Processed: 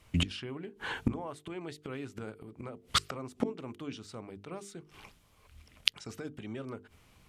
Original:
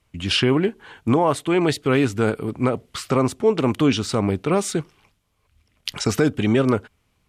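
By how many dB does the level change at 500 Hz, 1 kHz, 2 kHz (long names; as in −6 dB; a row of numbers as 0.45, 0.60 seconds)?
−21.5, −16.0, −12.0 decibels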